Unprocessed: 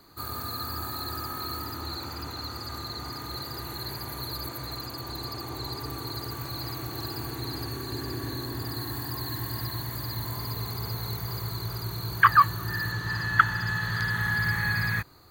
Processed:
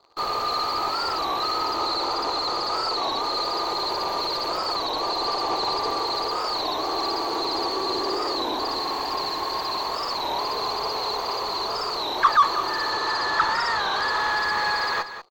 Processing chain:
inverse Chebyshev high-pass filter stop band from 170 Hz, stop band 50 dB
flat-topped bell 2,100 Hz −14.5 dB 1.3 octaves
in parallel at −7 dB: fuzz pedal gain 45 dB, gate −50 dBFS
on the sum: high-frequency loss of the air 180 metres
on a send: single-tap delay 191 ms −11.5 dB
on the sum: wow of a warped record 33 1/3 rpm, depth 160 cents

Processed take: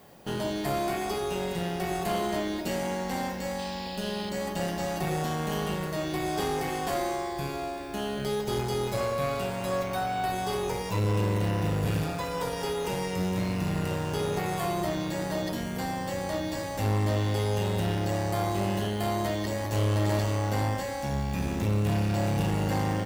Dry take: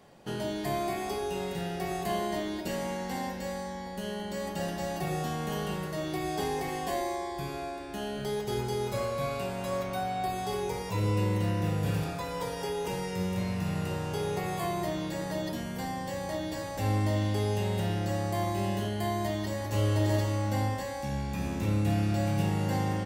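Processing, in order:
tube saturation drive 27 dB, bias 0.6
background noise violet −68 dBFS
sound drawn into the spectrogram noise, 0:03.58–0:04.30, 2,400–5,300 Hz −50 dBFS
level +6 dB

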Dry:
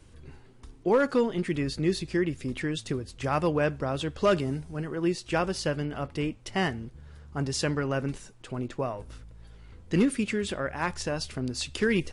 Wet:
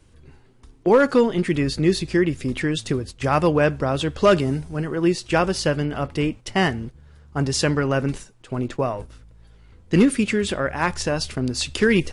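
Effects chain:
noise gate −41 dBFS, range −8 dB
level +7.5 dB

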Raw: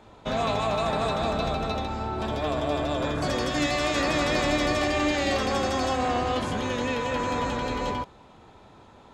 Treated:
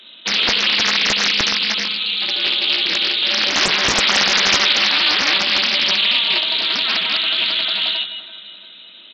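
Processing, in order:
on a send: delay that swaps between a low-pass and a high-pass 171 ms, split 1,700 Hz, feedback 65%, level −11.5 dB
on the sum: voice inversion scrambler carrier 3,900 Hz
Butterworth high-pass 170 Hz 96 dB per octave
low-shelf EQ 250 Hz +4.5 dB
single-tap delay 161 ms −18.5 dB
highs frequency-modulated by the lows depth 0.97 ms
level +8.5 dB

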